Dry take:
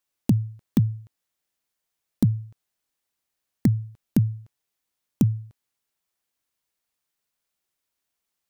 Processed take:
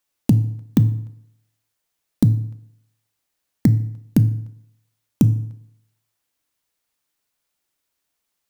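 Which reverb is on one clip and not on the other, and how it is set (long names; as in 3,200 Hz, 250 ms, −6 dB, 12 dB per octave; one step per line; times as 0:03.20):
feedback delay network reverb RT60 0.77 s, low-frequency decay 0.9×, high-frequency decay 0.75×, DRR 11.5 dB
level +4.5 dB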